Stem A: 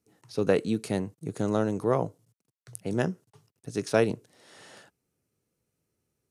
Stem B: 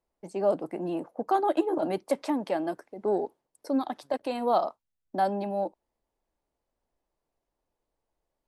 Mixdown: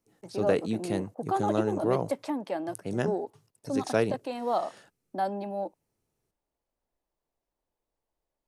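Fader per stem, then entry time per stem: -2.5 dB, -3.5 dB; 0.00 s, 0.00 s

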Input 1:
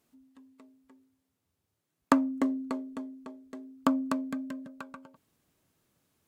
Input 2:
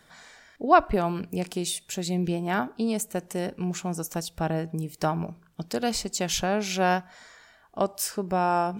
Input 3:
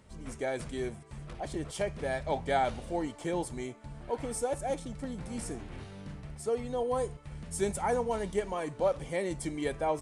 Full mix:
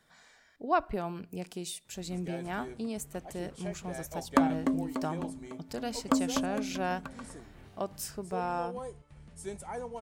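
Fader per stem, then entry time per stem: -1.0 dB, -9.5 dB, -9.5 dB; 2.25 s, 0.00 s, 1.85 s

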